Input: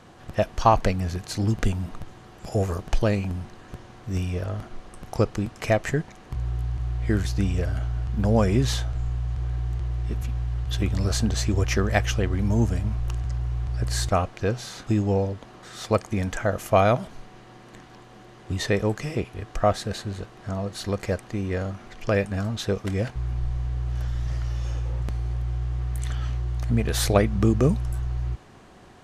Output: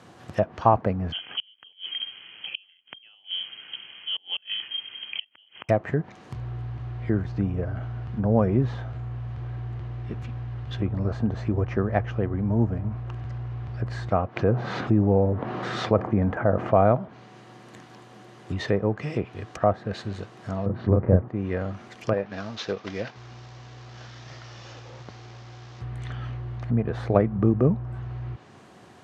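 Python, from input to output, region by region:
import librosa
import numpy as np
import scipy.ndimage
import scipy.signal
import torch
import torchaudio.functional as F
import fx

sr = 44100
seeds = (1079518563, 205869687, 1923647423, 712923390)

y = fx.chain(x, sr, fx.gate_flip(shuts_db=-18.0, range_db=-33),
    fx.freq_invert(carrier_hz=3200), at=(1.12, 5.69))
y = fx.chain(y, sr, fx.lowpass(hz=1900.0, slope=6),
    fx.env_flatten(amount_pct=50), at=(14.36, 16.92))
y = fx.chain(y, sr, fx.lowpass(hz=1600.0, slope=12),
    fx.low_shelf(hz=310.0, db=11.0),
    fx.doubler(ms=33.0, db=-2.5), at=(20.66, 21.28))
y = fx.chain(y, sr, fx.cvsd(bps=32000),
    fx.highpass(hz=400.0, slope=6), at=(22.13, 25.81))
y = fx.env_lowpass_down(y, sr, base_hz=1200.0, full_db=-20.0)
y = scipy.signal.sosfilt(scipy.signal.butter(4, 91.0, 'highpass', fs=sr, output='sos'), y)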